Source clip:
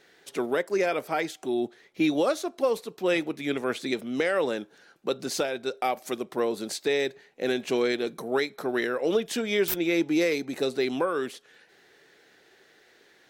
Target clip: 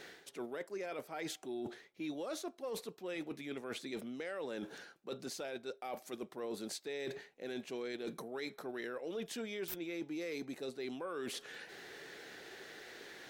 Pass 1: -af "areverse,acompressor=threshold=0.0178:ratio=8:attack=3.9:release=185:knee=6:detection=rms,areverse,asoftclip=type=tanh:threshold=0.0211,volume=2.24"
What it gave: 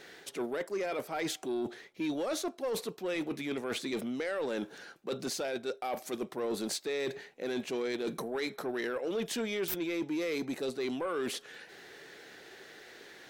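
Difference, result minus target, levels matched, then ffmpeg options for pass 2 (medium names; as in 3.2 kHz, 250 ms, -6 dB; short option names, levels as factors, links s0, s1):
compression: peak gain reduction -9 dB
-af "areverse,acompressor=threshold=0.00531:ratio=8:attack=3.9:release=185:knee=6:detection=rms,areverse,asoftclip=type=tanh:threshold=0.0211,volume=2.24"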